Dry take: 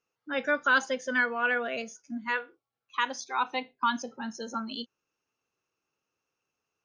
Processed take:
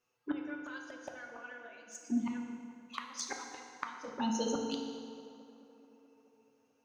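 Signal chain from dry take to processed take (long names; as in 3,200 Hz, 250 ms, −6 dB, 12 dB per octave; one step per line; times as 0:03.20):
gate with flip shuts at −25 dBFS, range −26 dB
flanger swept by the level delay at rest 8.2 ms, full sweep at −37 dBFS
on a send: tape delay 216 ms, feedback 80%, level −17.5 dB, low-pass 2,500 Hz
on the sum: feedback delay network reverb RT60 2.1 s, low-frequency decay 0.95×, high-frequency decay 0.85×, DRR 2 dB
level +5 dB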